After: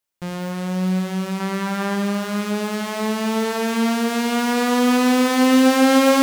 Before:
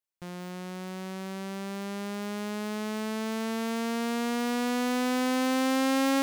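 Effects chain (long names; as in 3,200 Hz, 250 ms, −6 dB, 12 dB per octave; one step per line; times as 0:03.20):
0:01.40–0:01.96: parametric band 1,300 Hz +7.5 dB 1.4 octaves
on a send: convolution reverb RT60 2.4 s, pre-delay 3 ms, DRR 4.5 dB
on the sum: level +9 dB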